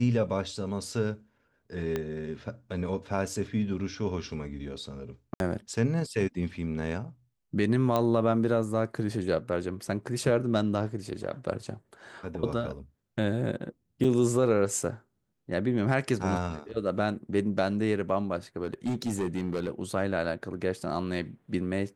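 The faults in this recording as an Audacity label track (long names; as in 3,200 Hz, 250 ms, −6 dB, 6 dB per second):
1.960000	1.960000	click −17 dBFS
5.340000	5.400000	drop-out 61 ms
7.960000	7.960000	click −14 dBFS
14.040000	14.050000	drop-out 5.1 ms
18.630000	19.690000	clipping −25 dBFS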